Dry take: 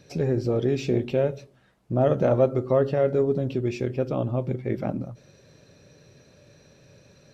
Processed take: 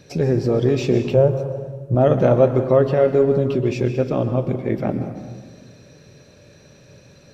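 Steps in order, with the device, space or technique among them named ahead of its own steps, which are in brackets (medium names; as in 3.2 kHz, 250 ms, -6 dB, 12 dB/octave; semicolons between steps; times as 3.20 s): saturated reverb return (on a send at -8.5 dB: reverberation RT60 1.4 s, pre-delay 116 ms + saturation -15.5 dBFS, distortion -17 dB); 1.14–1.95 s: on the sum: ten-band graphic EQ 125 Hz +8 dB, 250 Hz -9 dB, 500 Hz +4 dB, 1 kHz +4 dB, 2 kHz -10 dB, 4 kHz -10 dB; trim +5.5 dB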